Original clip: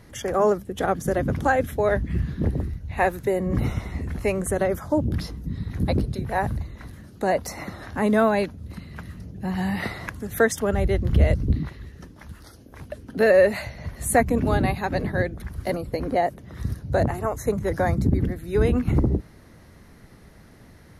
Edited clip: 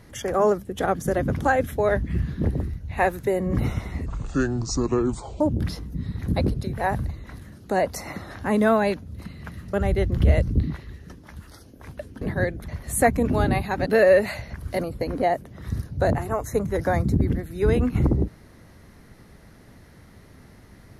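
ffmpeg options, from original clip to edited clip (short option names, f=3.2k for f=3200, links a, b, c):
-filter_complex "[0:a]asplit=8[a][b][c][d][e][f][g][h];[a]atrim=end=4.064[i];[b]atrim=start=4.06:end=4.92,asetpts=PTS-STARTPTS,asetrate=28224,aresample=44100,atrim=end_sample=59259,asetpts=PTS-STARTPTS[j];[c]atrim=start=4.916:end=9.252[k];[d]atrim=start=10.658:end=13.142[l];[e]atrim=start=14.988:end=15.462[m];[f]atrim=start=13.808:end=14.992[n];[g]atrim=start=13.138:end=13.812[o];[h]atrim=start=15.458[p];[i][j]acrossfade=d=0.004:c1=hsin:c2=hsin[q];[q][k]acrossfade=d=0.004:c1=hsin:c2=hsin[r];[r][l]acrossfade=d=0.004:c1=hsin:c2=hsin[s];[s][m]acrossfade=d=0.004:c1=hsin:c2=hsin[t];[t][n]acrossfade=d=0.004:c1=hsin:c2=hsin[u];[u][o]acrossfade=d=0.004:c1=hsin:c2=hsin[v];[v][p]acrossfade=d=0.004:c1=hsin:c2=hsin"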